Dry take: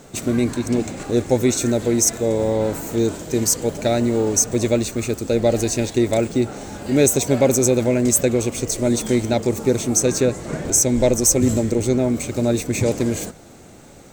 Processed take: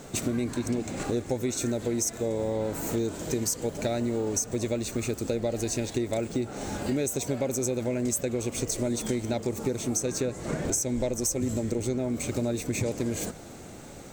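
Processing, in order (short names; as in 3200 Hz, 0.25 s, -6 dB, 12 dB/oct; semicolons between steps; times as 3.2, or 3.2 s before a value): compressor 6:1, threshold -26 dBFS, peak gain reduction 14.5 dB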